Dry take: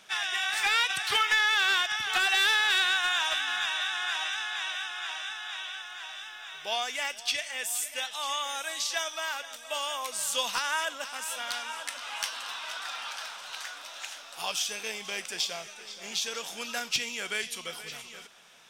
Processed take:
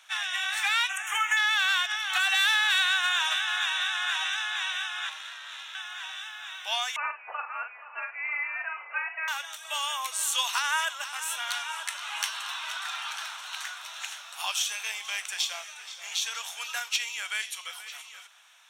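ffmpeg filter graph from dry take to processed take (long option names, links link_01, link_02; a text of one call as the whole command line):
ffmpeg -i in.wav -filter_complex "[0:a]asettb=1/sr,asplit=3[link_01][link_02][link_03];[link_01]atrim=end=0.894[link_04];[link_02]atrim=start=0.89:end=1.37,asetpts=PTS-STARTPTS,afade=type=in:duration=0.004:curve=qsin,afade=type=out:start_time=0.476:duration=0.004:curve=qsin,asuperstop=centerf=4400:order=4:qfactor=1.1,equalizer=frequency=6700:width=4.6:gain=10[link_05];[link_03]atrim=start=1.366[link_06];[link_04][link_05]acrossfade=duration=0.004:curve1=hsin:curve2=qsin[link_07];[link_07][link_06]acrossfade=duration=0.004:curve1=qsin:curve2=hsin,asettb=1/sr,asplit=3[link_08][link_09][link_10];[link_08]atrim=end=5.094[link_11];[link_09]atrim=start=5.09:end=5.75,asetpts=PTS-STARTPTS,afade=type=in:duration=0.004:curve=qsin,afade=type=out:start_time=0.656:duration=0.004:curve=qsin,aeval=exprs='(tanh(35.5*val(0)+0.6)-tanh(0.6))/35.5':channel_layout=same,aeval=exprs='val(0)*sin(2*PI*150*n/s)':channel_layout=same[link_12];[link_10]atrim=start=5.746[link_13];[link_11][link_12]acrossfade=duration=0.004:curve1=hsin:curve2=qsin[link_14];[link_14][link_13]acrossfade=duration=0.004:curve1=qsin:curve2=hsin,asettb=1/sr,asplit=3[link_15][link_16][link_17];[link_15]atrim=end=6.964[link_18];[link_16]atrim=start=6.96:end=9.28,asetpts=PTS-STARTPTS,afade=type=in:duration=0.004:curve=qsin,afade=type=out:start_time=2.316:duration=0.004:curve=qsin,highpass=frequency=530:poles=1,lowpass=frequency=2700:width_type=q:width=0.5098,lowpass=frequency=2700:width_type=q:width=0.6013,lowpass=frequency=2700:width_type=q:width=0.9,lowpass=frequency=2700:width_type=q:width=2.563,afreqshift=-3200,asplit=2[link_19][link_20];[link_20]adelay=45,volume=-7dB[link_21];[link_19][link_21]amix=inputs=2:normalize=0,atrim=end_sample=102312[link_22];[link_17]atrim=start=9.276[link_23];[link_18][link_22]acrossfade=duration=0.004:curve1=hsin:curve2=qsin[link_24];[link_24][link_23]acrossfade=duration=0.004:curve1=qsin:curve2=hsin,highpass=frequency=830:width=0.5412,highpass=frequency=830:width=1.3066,bandreject=frequency=4900:width=5.6,dynaudnorm=framelen=880:gausssize=7:maxgain=3dB" out.wav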